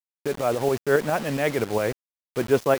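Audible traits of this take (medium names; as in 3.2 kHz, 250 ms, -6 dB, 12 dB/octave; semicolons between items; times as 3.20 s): tremolo saw up 7.3 Hz, depth 50%; a quantiser's noise floor 6-bit, dither none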